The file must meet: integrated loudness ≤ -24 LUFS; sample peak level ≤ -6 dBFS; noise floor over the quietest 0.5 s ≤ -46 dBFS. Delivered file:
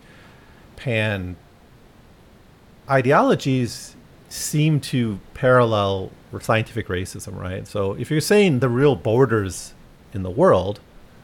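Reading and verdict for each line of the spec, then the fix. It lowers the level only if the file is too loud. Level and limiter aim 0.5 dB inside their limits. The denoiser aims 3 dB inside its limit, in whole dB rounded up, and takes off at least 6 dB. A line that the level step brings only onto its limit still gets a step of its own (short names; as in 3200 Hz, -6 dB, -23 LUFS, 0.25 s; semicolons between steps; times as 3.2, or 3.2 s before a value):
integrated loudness -20.5 LUFS: fail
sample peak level -5.0 dBFS: fail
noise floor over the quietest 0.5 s -49 dBFS: OK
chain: gain -4 dB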